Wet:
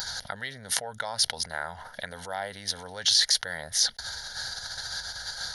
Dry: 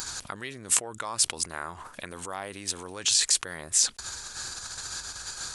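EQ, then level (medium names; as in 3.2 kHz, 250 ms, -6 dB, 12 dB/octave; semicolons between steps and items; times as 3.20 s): bass shelf 190 Hz -5 dB; static phaser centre 1.7 kHz, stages 8; +5.5 dB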